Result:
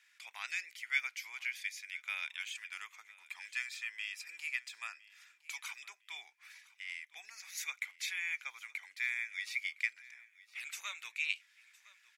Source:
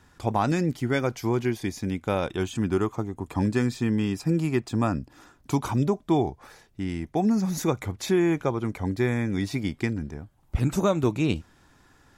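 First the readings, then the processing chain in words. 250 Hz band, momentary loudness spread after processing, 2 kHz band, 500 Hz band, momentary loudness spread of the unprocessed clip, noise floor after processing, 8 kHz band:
below −40 dB, 15 LU, 0.0 dB, below −40 dB, 8 LU, −69 dBFS, −7.0 dB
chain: four-pole ladder high-pass 2,000 Hz, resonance 65%
on a send: repeating echo 1,011 ms, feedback 26%, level −21 dB
on the sum: level +3.5 dB

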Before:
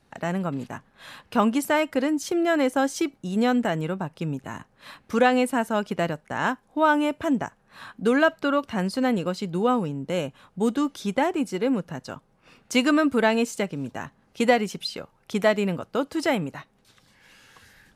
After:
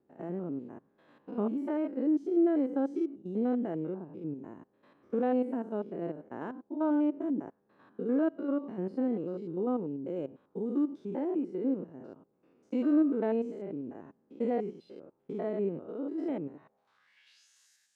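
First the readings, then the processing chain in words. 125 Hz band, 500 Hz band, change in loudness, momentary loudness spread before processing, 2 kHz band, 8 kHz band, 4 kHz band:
−12.0 dB, −8.5 dB, −8.0 dB, 15 LU, −24.5 dB, below −30 dB, below −25 dB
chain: spectrum averaged block by block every 100 ms
band-pass filter sweep 350 Hz → 6,900 Hz, 0:16.58–0:17.48

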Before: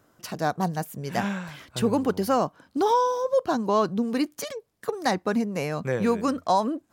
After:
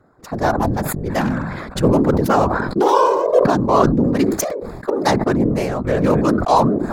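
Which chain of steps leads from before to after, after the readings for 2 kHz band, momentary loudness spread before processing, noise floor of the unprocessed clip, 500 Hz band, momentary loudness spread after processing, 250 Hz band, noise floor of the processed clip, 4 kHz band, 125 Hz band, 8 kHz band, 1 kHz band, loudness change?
+7.5 dB, 10 LU, −67 dBFS, +8.5 dB, 8 LU, +9.0 dB, −36 dBFS, +4.5 dB, +12.5 dB, +8.5 dB, +7.5 dB, +8.5 dB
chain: adaptive Wiener filter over 15 samples
random phases in short frames
level that may fall only so fast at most 34 dB per second
level +7.5 dB

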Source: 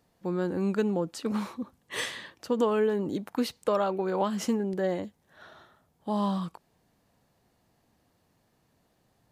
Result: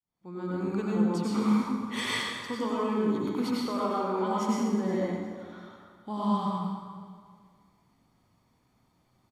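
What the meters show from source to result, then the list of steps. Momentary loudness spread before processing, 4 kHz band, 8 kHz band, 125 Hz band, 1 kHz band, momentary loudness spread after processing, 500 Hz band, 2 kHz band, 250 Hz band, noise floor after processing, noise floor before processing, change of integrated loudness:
10 LU, +2.5 dB, −0.5 dB, +1.5 dB, +2.0 dB, 17 LU, −3.5 dB, +1.5 dB, +2.5 dB, −70 dBFS, −71 dBFS, 0.0 dB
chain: fade in at the beginning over 0.99 s
mains-hum notches 50/100/150/200 Hz
speech leveller within 4 dB 0.5 s
high-shelf EQ 10,000 Hz −7.5 dB
comb filter 0.9 ms, depth 47%
repeating echo 360 ms, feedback 31%, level −17 dB
dense smooth reverb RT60 1.6 s, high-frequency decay 0.65×, pre-delay 80 ms, DRR −6 dB
level −6 dB

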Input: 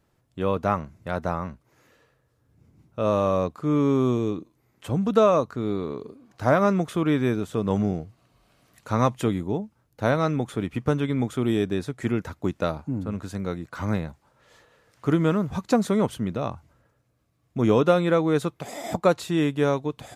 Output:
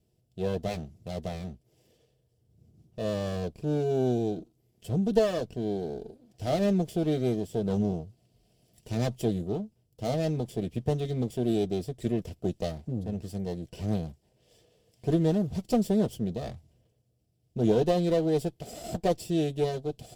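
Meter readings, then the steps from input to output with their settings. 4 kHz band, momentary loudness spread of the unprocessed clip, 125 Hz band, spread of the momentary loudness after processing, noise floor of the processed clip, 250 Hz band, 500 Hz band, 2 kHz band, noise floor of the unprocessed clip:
−3.5 dB, 12 LU, −3.5 dB, 12 LU, −71 dBFS, −4.5 dB, −4.5 dB, −12.0 dB, −69 dBFS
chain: lower of the sound and its delayed copy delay 0.38 ms
flat-topped bell 1,500 Hz −13 dB
notch comb filter 280 Hz
level −1.5 dB

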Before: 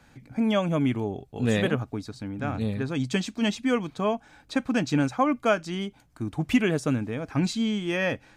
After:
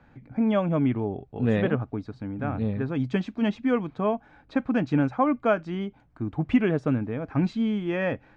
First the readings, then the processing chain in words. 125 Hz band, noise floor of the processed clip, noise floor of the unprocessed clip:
+1.0 dB, −58 dBFS, −58 dBFS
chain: Bessel low-pass filter 1,600 Hz, order 2
level +1 dB

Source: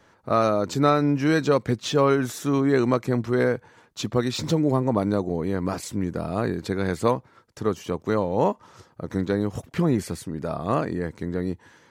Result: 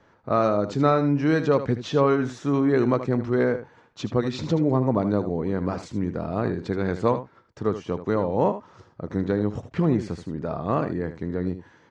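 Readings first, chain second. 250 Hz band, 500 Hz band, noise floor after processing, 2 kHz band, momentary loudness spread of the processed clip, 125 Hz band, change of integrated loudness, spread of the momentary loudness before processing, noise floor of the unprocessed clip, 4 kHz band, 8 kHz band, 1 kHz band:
0.0 dB, 0.0 dB, −58 dBFS, −2.5 dB, 9 LU, +0.5 dB, 0.0 dB, 9 LU, −59 dBFS, −6.0 dB, below −10 dB, −1.0 dB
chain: low-pass filter 6,800 Hz 24 dB per octave
high-shelf EQ 2,800 Hz −9.5 dB
single-tap delay 77 ms −11.5 dB

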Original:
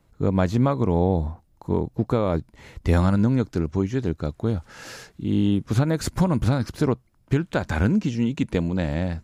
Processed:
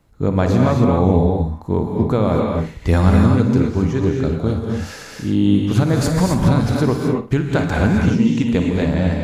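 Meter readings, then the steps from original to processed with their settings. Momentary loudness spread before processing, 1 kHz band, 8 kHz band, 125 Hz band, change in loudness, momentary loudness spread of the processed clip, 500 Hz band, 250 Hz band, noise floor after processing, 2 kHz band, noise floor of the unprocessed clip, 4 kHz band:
9 LU, +6.5 dB, +6.5 dB, +6.5 dB, +6.5 dB, 7 LU, +6.5 dB, +7.0 dB, −36 dBFS, +6.5 dB, −60 dBFS, +6.5 dB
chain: flutter between parallel walls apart 9.5 metres, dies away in 0.29 s
reverb whose tail is shaped and stops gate 290 ms rising, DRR 0.5 dB
level +3.5 dB

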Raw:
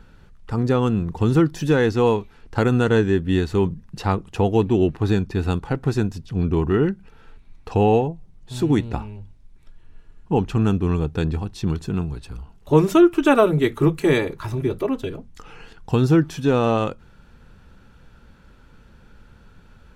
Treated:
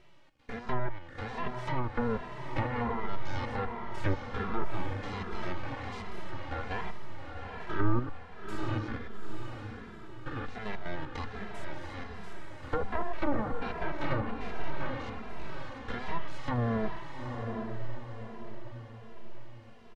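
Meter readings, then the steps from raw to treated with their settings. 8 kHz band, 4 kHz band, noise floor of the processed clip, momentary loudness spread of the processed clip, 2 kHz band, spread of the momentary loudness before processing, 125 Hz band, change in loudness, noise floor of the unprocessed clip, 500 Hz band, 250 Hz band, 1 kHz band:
−18.0 dB, −12.0 dB, −47 dBFS, 14 LU, −8.5 dB, 11 LU, −15.0 dB, −16.5 dB, −50 dBFS, −17.5 dB, −17.5 dB, −9.0 dB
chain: spectrum averaged block by block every 100 ms
high-pass filter 560 Hz 24 dB per octave
full-wave rectification
low-pass filter 1,500 Hz 6 dB per octave
in parallel at −3 dB: downward compressor, threshold −43 dBFS, peak gain reduction 20.5 dB
on the sum: treble cut that deepens with the level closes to 820 Hz, closed at −22 dBFS
on a send: feedback delay with all-pass diffusion 834 ms, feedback 45%, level −5 dB
on the sum: barber-pole flanger 2.6 ms −1.3 Hz
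level +3.5 dB

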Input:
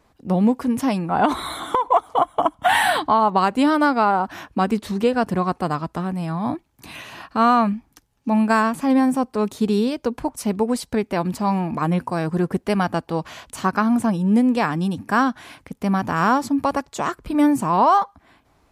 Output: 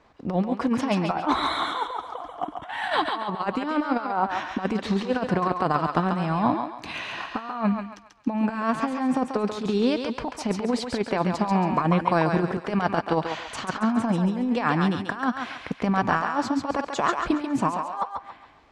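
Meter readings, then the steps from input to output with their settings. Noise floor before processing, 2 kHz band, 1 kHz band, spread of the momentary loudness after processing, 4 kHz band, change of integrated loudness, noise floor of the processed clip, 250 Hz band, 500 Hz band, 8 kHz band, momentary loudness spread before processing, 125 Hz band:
−62 dBFS, −4.0 dB, −5.5 dB, 9 LU, −2.0 dB, −5.0 dB, −47 dBFS, −5.0 dB, −4.5 dB, −7.5 dB, 10 LU, −2.5 dB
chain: low-shelf EQ 320 Hz −7.5 dB
transient designer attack +5 dB, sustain +1 dB
compressor whose output falls as the input rises −23 dBFS, ratio −0.5
high-frequency loss of the air 130 metres
on a send: feedback echo with a high-pass in the loop 138 ms, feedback 40%, high-pass 560 Hz, level −4 dB

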